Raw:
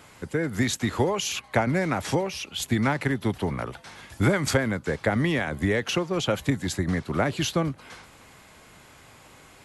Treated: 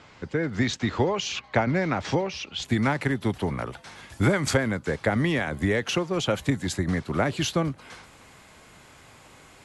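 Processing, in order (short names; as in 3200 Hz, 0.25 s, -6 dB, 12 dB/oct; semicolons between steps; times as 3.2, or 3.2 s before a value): LPF 5800 Hz 24 dB/oct, from 2.65 s 11000 Hz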